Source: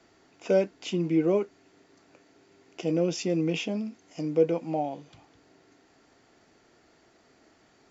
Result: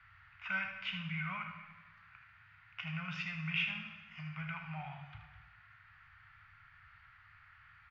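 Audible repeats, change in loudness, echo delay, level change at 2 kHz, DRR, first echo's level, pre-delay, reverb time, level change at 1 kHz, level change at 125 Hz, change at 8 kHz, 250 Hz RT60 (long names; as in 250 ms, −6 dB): 1, −11.5 dB, 77 ms, +5.0 dB, 3.0 dB, −8.5 dB, 8 ms, 1.3 s, −8.0 dB, −8.0 dB, can't be measured, 1.3 s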